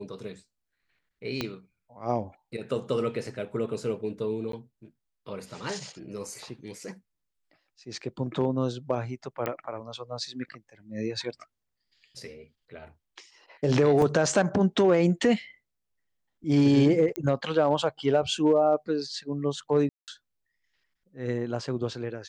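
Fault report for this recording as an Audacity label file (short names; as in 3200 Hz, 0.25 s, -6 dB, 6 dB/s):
1.410000	1.410000	pop -14 dBFS
4.520000	4.530000	gap 13 ms
9.460000	9.460000	pop -16 dBFS
14.020000	14.020000	gap 2.2 ms
17.160000	17.160000	pop -16 dBFS
19.890000	20.080000	gap 0.188 s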